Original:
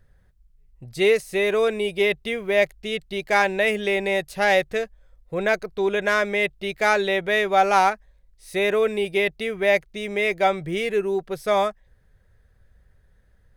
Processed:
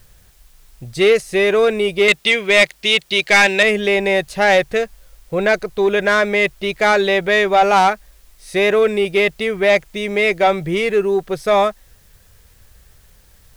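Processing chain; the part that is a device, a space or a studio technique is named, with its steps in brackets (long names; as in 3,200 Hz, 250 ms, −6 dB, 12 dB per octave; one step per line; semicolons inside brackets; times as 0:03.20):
0:02.08–0:03.63: meter weighting curve D
compact cassette (soft clipping −13 dBFS, distortion −14 dB; low-pass filter 9,900 Hz; tape wow and flutter 20 cents; white noise bed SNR 38 dB)
level +7.5 dB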